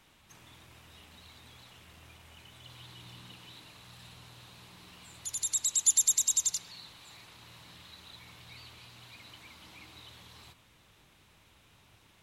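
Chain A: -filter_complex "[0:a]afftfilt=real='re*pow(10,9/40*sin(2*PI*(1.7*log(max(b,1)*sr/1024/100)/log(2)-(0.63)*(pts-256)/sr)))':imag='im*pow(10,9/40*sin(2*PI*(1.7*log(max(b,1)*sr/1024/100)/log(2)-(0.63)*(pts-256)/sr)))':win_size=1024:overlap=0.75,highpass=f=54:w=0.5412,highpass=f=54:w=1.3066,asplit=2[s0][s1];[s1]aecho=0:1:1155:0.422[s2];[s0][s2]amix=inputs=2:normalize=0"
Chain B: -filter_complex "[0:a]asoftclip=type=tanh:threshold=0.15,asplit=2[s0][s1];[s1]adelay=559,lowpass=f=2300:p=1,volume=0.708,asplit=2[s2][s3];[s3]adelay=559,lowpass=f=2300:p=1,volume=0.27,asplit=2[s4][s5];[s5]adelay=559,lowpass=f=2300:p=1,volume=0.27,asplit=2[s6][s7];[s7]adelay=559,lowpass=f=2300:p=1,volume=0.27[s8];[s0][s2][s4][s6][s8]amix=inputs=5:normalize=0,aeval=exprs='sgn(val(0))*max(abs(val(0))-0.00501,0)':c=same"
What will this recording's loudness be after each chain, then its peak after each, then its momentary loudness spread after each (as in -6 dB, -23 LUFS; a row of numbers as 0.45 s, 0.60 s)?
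-29.0 LUFS, -28.5 LUFS; -14.0 dBFS, -17.5 dBFS; 23 LU, 19 LU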